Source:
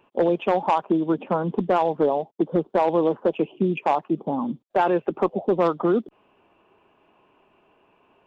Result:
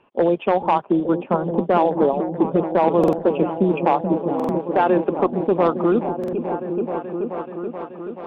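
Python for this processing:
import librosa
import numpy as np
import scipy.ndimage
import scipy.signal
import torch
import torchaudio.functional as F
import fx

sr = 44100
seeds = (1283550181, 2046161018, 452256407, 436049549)

p1 = scipy.signal.sosfilt(scipy.signal.butter(2, 3600.0, 'lowpass', fs=sr, output='sos'), x)
p2 = fx.level_steps(p1, sr, step_db=22)
p3 = p1 + F.gain(torch.from_numpy(p2), -1.0).numpy()
p4 = fx.echo_opening(p3, sr, ms=430, hz=200, octaves=1, feedback_pct=70, wet_db=-3)
p5 = fx.buffer_glitch(p4, sr, at_s=(2.99, 4.35, 6.19), block=2048, repeats=2)
y = F.gain(torch.from_numpy(p5), -1.5).numpy()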